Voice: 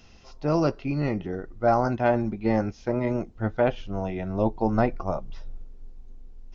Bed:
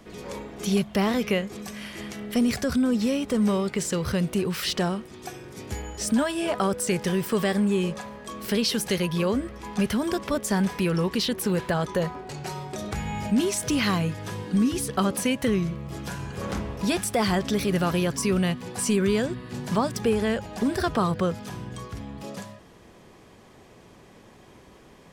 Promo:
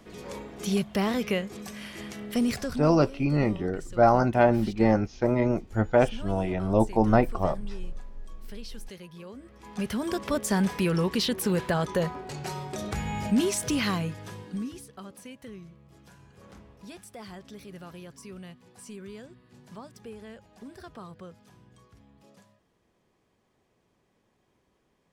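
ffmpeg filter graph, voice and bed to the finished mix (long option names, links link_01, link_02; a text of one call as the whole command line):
ffmpeg -i stem1.wav -i stem2.wav -filter_complex "[0:a]adelay=2350,volume=2dB[link_01];[1:a]volume=15.5dB,afade=type=out:start_time=2.5:duration=0.44:silence=0.149624,afade=type=in:start_time=9.37:duration=1:silence=0.11885,afade=type=out:start_time=13.47:duration=1.43:silence=0.112202[link_02];[link_01][link_02]amix=inputs=2:normalize=0" out.wav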